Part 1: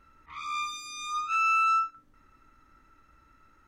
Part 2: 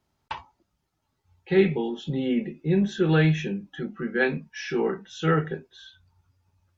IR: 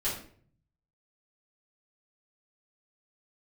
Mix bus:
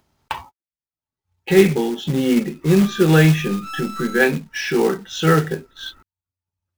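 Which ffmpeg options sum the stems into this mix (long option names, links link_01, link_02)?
-filter_complex "[0:a]lowpass=frequency=1700:poles=1,aeval=exprs='(tanh(70.8*val(0)+0.6)-tanh(0.6))/70.8':channel_layout=same,adelay=2350,volume=2.5dB[link_01];[1:a]agate=range=-58dB:threshold=-47dB:ratio=16:detection=peak,dynaudnorm=framelen=100:gausssize=9:maxgain=6dB,volume=2dB[link_02];[link_01][link_02]amix=inputs=2:normalize=0,acompressor=mode=upward:threshold=-20dB:ratio=2.5,acrusher=bits=4:mode=log:mix=0:aa=0.000001"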